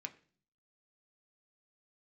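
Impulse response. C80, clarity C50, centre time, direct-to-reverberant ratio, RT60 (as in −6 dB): 20.5 dB, 17.0 dB, 6 ms, 5.0 dB, 0.45 s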